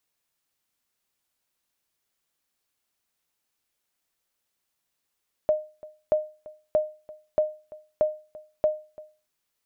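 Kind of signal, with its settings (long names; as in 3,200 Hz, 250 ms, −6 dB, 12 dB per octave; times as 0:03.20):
ping with an echo 614 Hz, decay 0.34 s, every 0.63 s, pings 6, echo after 0.34 s, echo −21 dB −14 dBFS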